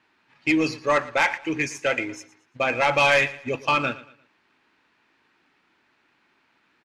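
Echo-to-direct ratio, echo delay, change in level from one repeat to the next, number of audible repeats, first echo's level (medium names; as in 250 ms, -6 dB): -17.5 dB, 115 ms, -9.5 dB, 2, -18.0 dB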